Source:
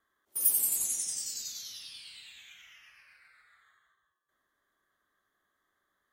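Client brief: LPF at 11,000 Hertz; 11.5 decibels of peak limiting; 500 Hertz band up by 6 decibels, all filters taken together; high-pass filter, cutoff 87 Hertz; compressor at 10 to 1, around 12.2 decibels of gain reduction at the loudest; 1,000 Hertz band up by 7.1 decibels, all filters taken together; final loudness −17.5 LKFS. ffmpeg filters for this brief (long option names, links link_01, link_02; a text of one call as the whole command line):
ffmpeg -i in.wav -af "highpass=87,lowpass=11000,equalizer=frequency=500:width_type=o:gain=5.5,equalizer=frequency=1000:width_type=o:gain=7.5,acompressor=threshold=-37dB:ratio=10,volume=28dB,alimiter=limit=-9dB:level=0:latency=1" out.wav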